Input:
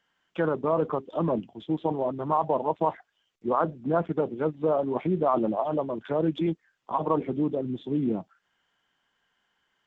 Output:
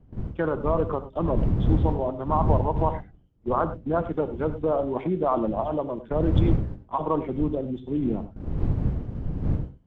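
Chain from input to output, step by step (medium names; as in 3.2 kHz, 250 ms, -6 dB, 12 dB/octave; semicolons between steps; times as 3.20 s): wind noise 130 Hz -28 dBFS; gate -33 dBFS, range -16 dB; gated-style reverb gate 120 ms rising, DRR 12 dB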